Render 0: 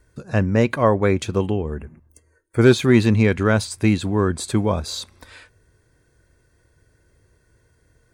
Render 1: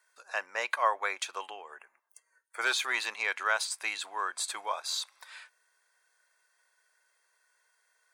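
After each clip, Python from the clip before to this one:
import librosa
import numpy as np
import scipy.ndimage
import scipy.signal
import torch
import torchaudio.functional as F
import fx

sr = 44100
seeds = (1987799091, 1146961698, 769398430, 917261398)

y = scipy.signal.sosfilt(scipy.signal.butter(4, 810.0, 'highpass', fs=sr, output='sos'), x)
y = y * 10.0 ** (-3.5 / 20.0)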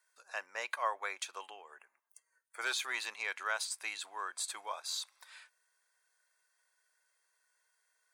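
y = fx.high_shelf(x, sr, hz=4500.0, db=5.0)
y = y * 10.0 ** (-7.5 / 20.0)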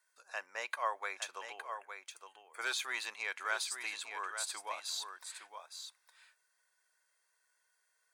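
y = x + 10.0 ** (-8.0 / 20.0) * np.pad(x, (int(863 * sr / 1000.0), 0))[:len(x)]
y = y * 10.0 ** (-1.0 / 20.0)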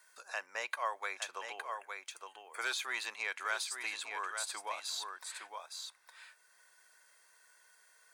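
y = fx.band_squash(x, sr, depth_pct=40)
y = y * 10.0 ** (1.0 / 20.0)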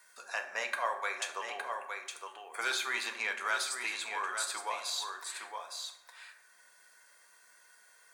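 y = fx.rev_fdn(x, sr, rt60_s=0.89, lf_ratio=1.5, hf_ratio=0.55, size_ms=25.0, drr_db=4.0)
y = y * 10.0 ** (2.5 / 20.0)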